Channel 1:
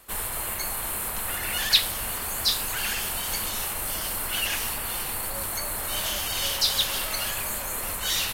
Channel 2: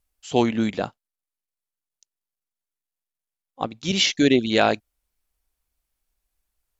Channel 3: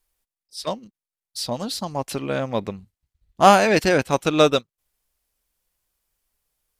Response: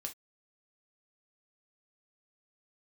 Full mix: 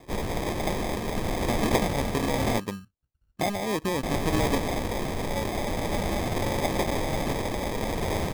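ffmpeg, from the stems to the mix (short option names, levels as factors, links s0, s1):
-filter_complex "[0:a]acontrast=64,volume=0.841,asplit=3[s0][s1][s2];[s0]atrim=end=2.6,asetpts=PTS-STARTPTS,afade=t=out:st=2.596:d=0.004:c=hsin[s3];[s1]atrim=start=2.6:end=4.03,asetpts=PTS-STARTPTS,volume=0[s4];[s2]atrim=start=4.03,asetpts=PTS-STARTPTS,afade=t=in:d=0.004:c=hsin[s5];[s3][s4][s5]concat=n=3:v=0:a=1[s6];[1:a]highpass=680,adelay=100,volume=0.106[s7];[2:a]acompressor=threshold=0.0708:ratio=5,volume=0.447,asplit=2[s8][s9];[s9]volume=0.2[s10];[3:a]atrim=start_sample=2205[s11];[s10][s11]afir=irnorm=-1:irlink=0[s12];[s6][s7][s8][s12]amix=inputs=4:normalize=0,lowpass=2400,equalizer=f=230:t=o:w=2.6:g=7,acrusher=samples=31:mix=1:aa=0.000001"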